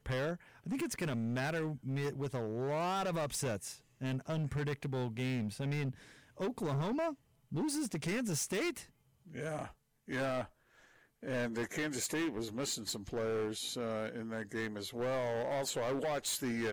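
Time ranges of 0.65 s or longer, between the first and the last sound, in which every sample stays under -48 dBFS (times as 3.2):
10.46–11.23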